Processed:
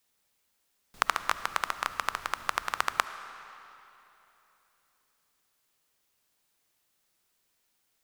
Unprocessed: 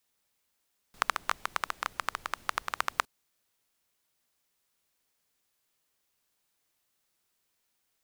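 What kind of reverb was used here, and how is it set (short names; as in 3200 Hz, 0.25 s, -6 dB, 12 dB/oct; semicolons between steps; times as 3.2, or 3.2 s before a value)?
digital reverb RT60 3.2 s, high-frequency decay 0.85×, pre-delay 30 ms, DRR 12 dB; gain +2.5 dB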